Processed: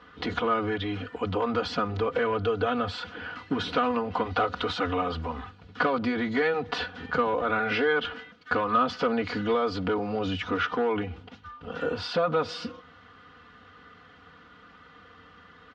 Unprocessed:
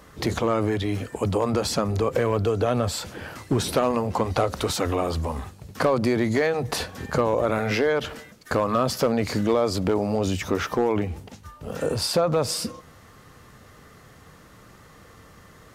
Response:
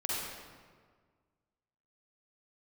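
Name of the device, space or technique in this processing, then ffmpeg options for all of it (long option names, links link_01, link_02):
guitar cabinet: -af "highpass=87,equalizer=frequency=100:width_type=q:width=4:gain=6,equalizer=frequency=210:width_type=q:width=4:gain=-6,equalizer=frequency=550:width_type=q:width=4:gain=-5,equalizer=frequency=1400:width_type=q:width=4:gain=9,equalizer=frequency=3100:width_type=q:width=4:gain=6,lowpass=frequency=4100:width=0.5412,lowpass=frequency=4100:width=1.3066,aecho=1:1:4.1:0.91,volume=-5.5dB"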